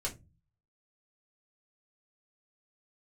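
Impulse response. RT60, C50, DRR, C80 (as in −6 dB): 0.25 s, 15.5 dB, −4.0 dB, 23.5 dB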